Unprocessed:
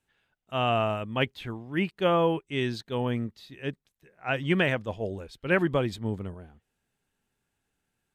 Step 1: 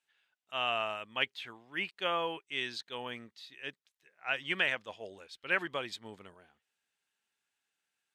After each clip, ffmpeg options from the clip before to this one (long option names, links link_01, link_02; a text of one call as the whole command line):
ffmpeg -i in.wav -af "bandpass=frequency=3700:width_type=q:width=0.53:csg=0" out.wav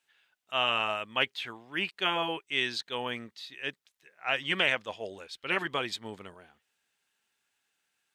ffmpeg -i in.wav -af "afftfilt=real='re*lt(hypot(re,im),0.141)':imag='im*lt(hypot(re,im),0.141)':win_size=1024:overlap=0.75,volume=6.5dB" out.wav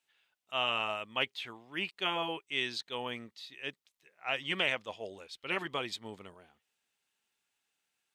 ffmpeg -i in.wav -af "equalizer=frequency=1600:width=3.7:gain=-5,volume=-3.5dB" out.wav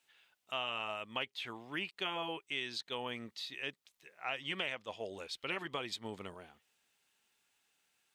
ffmpeg -i in.wav -af "acompressor=threshold=-44dB:ratio=3,volume=5.5dB" out.wav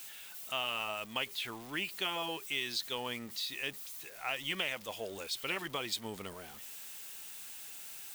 ffmpeg -i in.wav -af "aeval=exprs='val(0)+0.5*0.00299*sgn(val(0))':channel_layout=same,aemphasis=mode=production:type=50kf" out.wav